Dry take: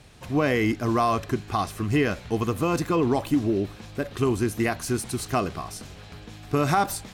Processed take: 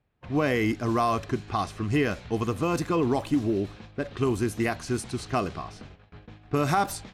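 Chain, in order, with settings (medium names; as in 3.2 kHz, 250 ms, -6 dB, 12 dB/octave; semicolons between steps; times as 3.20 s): gate -41 dBFS, range -21 dB; level-controlled noise filter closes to 2.1 kHz, open at -19.5 dBFS; trim -2 dB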